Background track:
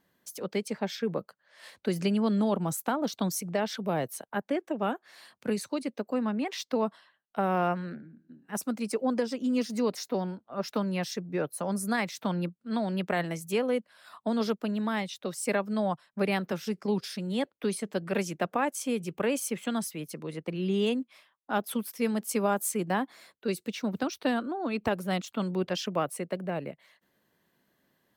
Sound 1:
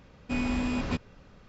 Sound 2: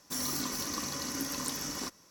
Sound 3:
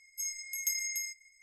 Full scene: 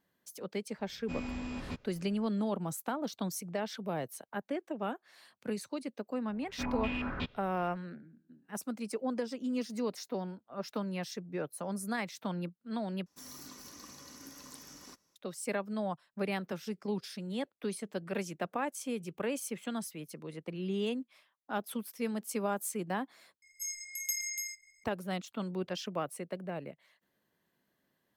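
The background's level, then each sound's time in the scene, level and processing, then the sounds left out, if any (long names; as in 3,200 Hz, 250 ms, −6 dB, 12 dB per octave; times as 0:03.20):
background track −6.5 dB
0:00.79: mix in 1 −10 dB
0:06.29: mix in 1 −7.5 dB + low-pass on a step sequencer 5.5 Hz 790–3,500 Hz
0:13.06: overwrite with 2 −15 dB
0:23.42: overwrite with 3 −2 dB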